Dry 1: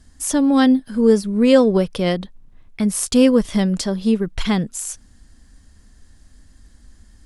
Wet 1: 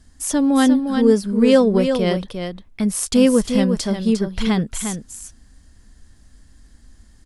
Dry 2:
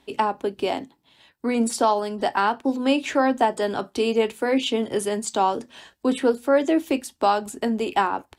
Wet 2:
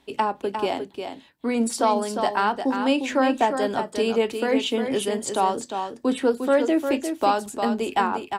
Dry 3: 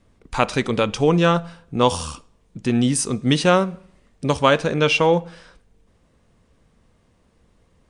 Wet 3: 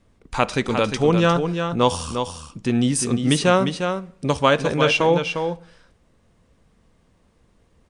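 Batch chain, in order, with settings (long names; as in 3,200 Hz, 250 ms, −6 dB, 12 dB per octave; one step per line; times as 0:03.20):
single-tap delay 353 ms −7 dB
level −1 dB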